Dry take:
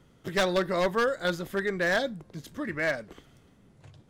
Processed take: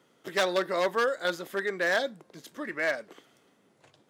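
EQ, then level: HPF 330 Hz 12 dB/oct; 0.0 dB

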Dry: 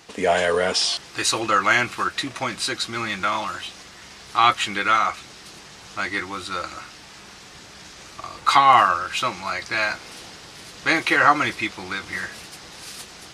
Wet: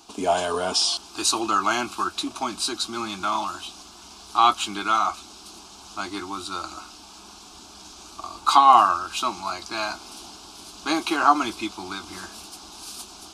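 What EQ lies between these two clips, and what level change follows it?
fixed phaser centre 510 Hz, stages 6; +1.5 dB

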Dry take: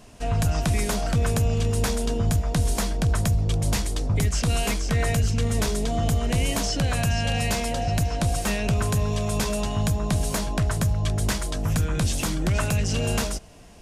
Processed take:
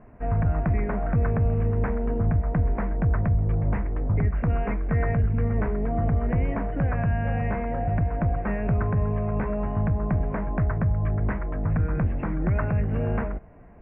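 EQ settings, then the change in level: steep low-pass 2200 Hz 48 dB/oct; air absorption 380 m; 0.0 dB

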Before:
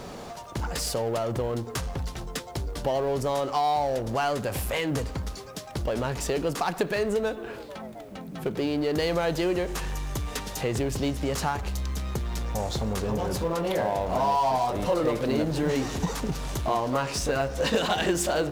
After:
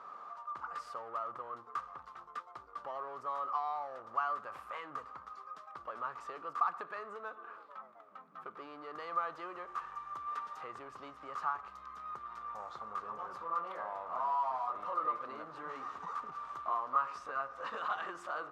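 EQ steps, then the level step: band-pass 1200 Hz, Q 14; +7.5 dB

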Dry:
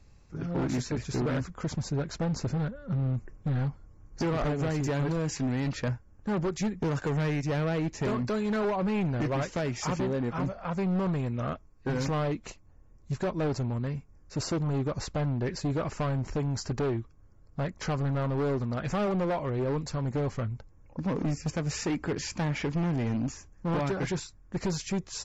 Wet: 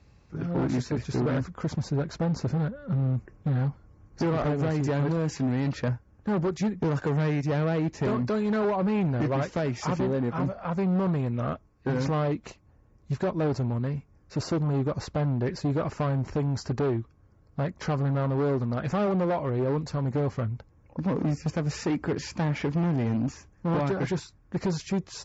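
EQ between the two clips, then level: HPF 58 Hz; LPF 5000 Hz 12 dB/oct; dynamic EQ 2700 Hz, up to -4 dB, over -49 dBFS, Q 0.8; +3.0 dB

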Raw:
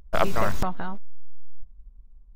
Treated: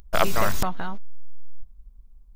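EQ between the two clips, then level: bell 3600 Hz +3.5 dB 2.7 oct; high shelf 6500 Hz +11.5 dB; 0.0 dB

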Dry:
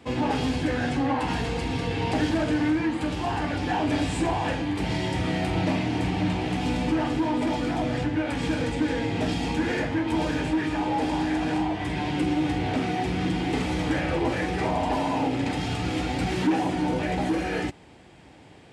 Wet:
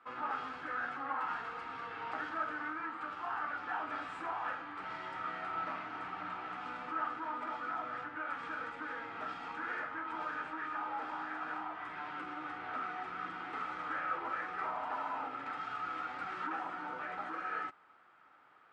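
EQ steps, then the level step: band-pass 1300 Hz, Q 12; +8.5 dB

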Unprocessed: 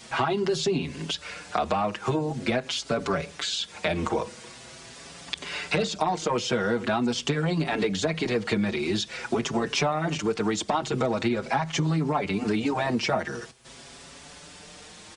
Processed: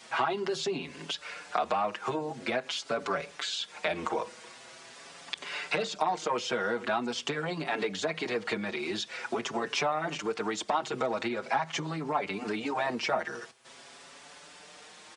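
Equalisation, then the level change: HPF 900 Hz 6 dB/oct; high shelf 2400 Hz -9 dB; +2.0 dB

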